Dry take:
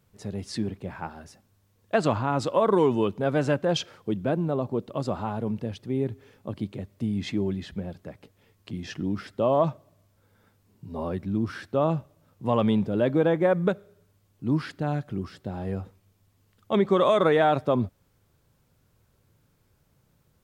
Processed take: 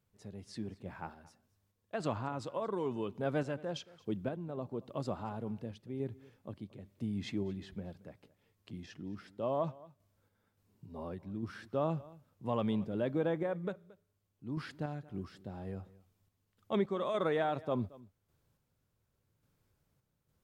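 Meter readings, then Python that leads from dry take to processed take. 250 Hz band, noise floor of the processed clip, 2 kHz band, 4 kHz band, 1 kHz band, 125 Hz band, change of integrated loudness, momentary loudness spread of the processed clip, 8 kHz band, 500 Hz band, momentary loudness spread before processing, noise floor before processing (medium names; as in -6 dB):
-11.5 dB, -80 dBFS, -11.5 dB, -12.5 dB, -12.0 dB, -11.0 dB, -11.5 dB, 15 LU, no reading, -12.0 dB, 15 LU, -67 dBFS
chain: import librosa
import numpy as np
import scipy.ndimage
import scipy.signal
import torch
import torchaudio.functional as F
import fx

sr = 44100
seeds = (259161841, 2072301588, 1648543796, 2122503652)

p1 = fx.tremolo_random(x, sr, seeds[0], hz=3.5, depth_pct=55)
p2 = p1 + fx.echo_single(p1, sr, ms=225, db=-21.0, dry=0)
y = p2 * 10.0 ** (-8.5 / 20.0)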